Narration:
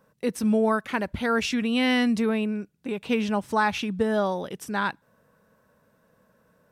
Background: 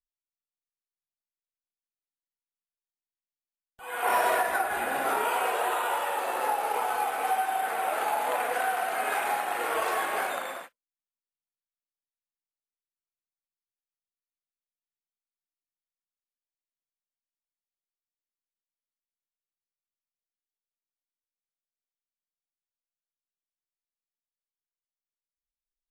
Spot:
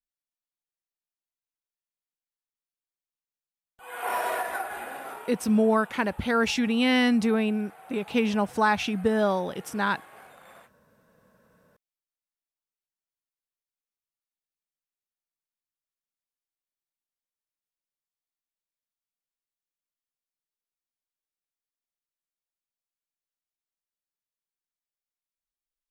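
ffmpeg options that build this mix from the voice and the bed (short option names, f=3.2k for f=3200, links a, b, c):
-filter_complex "[0:a]adelay=5050,volume=0.5dB[a];[1:a]volume=13.5dB,afade=t=out:st=4.54:d=0.81:silence=0.149624,afade=t=in:st=10.38:d=0.9:silence=0.133352[b];[a][b]amix=inputs=2:normalize=0"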